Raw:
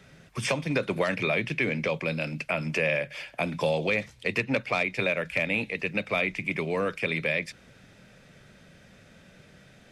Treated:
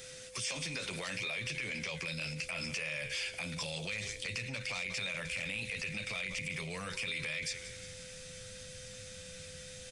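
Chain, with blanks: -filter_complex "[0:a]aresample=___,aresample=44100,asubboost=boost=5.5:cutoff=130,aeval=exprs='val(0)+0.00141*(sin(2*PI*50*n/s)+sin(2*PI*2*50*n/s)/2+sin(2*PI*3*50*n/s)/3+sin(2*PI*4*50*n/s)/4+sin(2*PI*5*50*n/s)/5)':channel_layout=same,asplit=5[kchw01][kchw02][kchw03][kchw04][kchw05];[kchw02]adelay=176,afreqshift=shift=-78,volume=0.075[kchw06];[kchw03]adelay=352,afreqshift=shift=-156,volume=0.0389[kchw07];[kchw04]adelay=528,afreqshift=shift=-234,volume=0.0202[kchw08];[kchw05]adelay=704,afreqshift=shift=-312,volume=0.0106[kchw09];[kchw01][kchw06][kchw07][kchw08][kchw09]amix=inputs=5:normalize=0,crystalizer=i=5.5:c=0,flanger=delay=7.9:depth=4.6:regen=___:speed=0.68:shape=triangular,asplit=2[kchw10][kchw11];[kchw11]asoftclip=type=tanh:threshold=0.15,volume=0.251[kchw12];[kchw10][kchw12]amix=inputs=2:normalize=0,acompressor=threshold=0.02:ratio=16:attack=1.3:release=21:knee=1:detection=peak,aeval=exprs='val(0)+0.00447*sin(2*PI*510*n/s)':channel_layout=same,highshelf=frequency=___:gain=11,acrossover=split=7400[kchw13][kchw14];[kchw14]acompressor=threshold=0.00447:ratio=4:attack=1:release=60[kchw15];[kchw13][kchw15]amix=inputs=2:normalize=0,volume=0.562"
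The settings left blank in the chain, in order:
22050, -35, 2700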